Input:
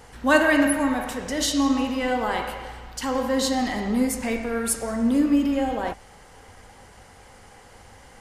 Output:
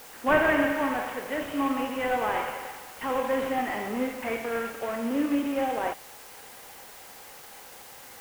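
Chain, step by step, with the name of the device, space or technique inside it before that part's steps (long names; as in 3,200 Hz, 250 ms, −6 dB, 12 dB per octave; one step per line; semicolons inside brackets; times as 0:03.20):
army field radio (band-pass filter 380–3,100 Hz; variable-slope delta modulation 16 kbit/s; white noise bed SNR 19 dB)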